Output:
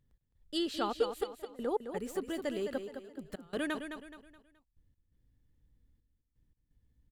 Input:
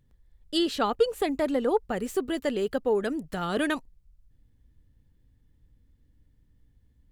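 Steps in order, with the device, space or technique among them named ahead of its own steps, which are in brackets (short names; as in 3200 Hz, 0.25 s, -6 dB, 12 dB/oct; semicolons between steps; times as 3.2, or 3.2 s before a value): trance gate with a delay (step gate "x.xxxxx.." 85 bpm -24 dB; feedback echo 0.212 s, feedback 37%, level -8 dB); gain -8 dB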